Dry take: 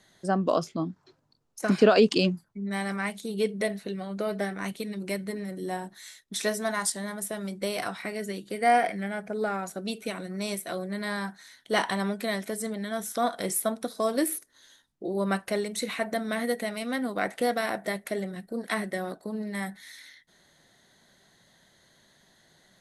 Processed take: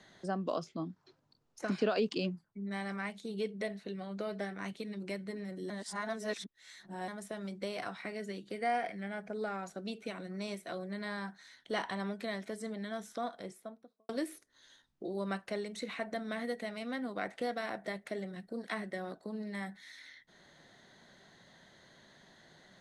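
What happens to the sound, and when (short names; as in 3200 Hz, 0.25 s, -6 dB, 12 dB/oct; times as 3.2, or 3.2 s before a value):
5.7–7.08 reverse
12.86–14.09 studio fade out
whole clip: LPF 6100 Hz 12 dB/oct; three-band squash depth 40%; gain -8.5 dB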